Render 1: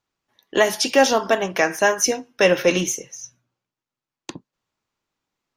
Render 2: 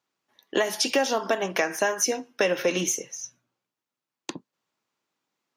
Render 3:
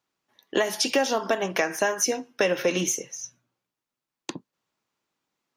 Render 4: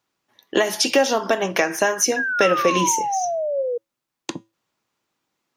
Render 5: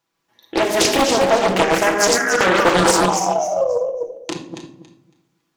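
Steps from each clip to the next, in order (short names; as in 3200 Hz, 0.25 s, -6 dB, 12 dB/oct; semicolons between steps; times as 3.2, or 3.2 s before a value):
HPF 180 Hz 12 dB/oct; compressor 6:1, threshold -20 dBFS, peak gain reduction 10 dB
low shelf 82 Hz +11 dB
painted sound fall, 2.16–3.78, 470–1700 Hz -28 dBFS; resonator 110 Hz, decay 0.26 s, harmonics odd, mix 40%; gain +8.5 dB
regenerating reverse delay 0.139 s, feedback 44%, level -1 dB; reverb RT60 0.65 s, pre-delay 6 ms, DRR 2 dB; Doppler distortion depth 0.69 ms; gain -1 dB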